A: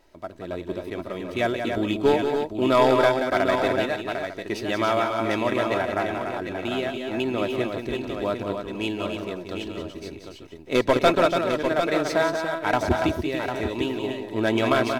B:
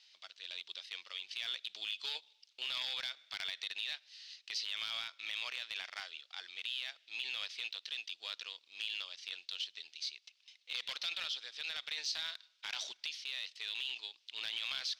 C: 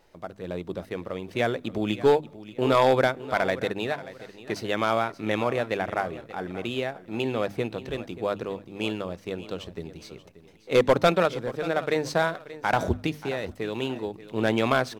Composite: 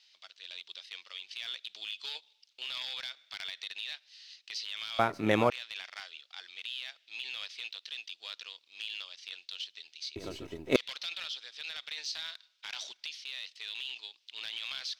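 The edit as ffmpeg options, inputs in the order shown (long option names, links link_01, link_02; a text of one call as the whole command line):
ffmpeg -i take0.wav -i take1.wav -i take2.wav -filter_complex "[1:a]asplit=3[link_01][link_02][link_03];[link_01]atrim=end=4.992[link_04];[2:a]atrim=start=4.988:end=5.502[link_05];[link_02]atrim=start=5.498:end=10.162[link_06];[0:a]atrim=start=10.158:end=10.762[link_07];[link_03]atrim=start=10.758[link_08];[link_04][link_05]acrossfade=duration=0.004:curve1=hsin:curve2=hsin[link_09];[link_09][link_06]acrossfade=duration=0.004:curve1=hsin:curve2=hsin[link_10];[link_10][link_07]acrossfade=duration=0.004:curve1=hsin:curve2=hsin[link_11];[link_11][link_08]acrossfade=duration=0.004:curve1=hsin:curve2=hsin" out.wav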